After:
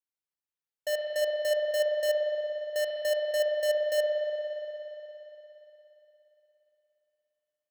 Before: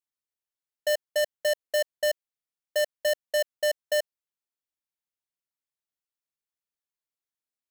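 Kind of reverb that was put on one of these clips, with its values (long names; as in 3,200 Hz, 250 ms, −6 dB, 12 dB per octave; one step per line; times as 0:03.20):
spring reverb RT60 3.6 s, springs 58 ms, chirp 40 ms, DRR −1 dB
level −6 dB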